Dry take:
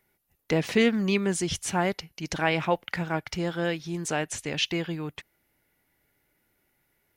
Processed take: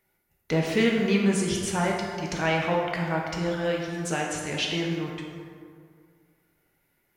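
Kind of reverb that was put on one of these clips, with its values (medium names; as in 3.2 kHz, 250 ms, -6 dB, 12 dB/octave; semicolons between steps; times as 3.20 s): plate-style reverb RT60 2.1 s, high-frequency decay 0.5×, DRR -1.5 dB; trim -2.5 dB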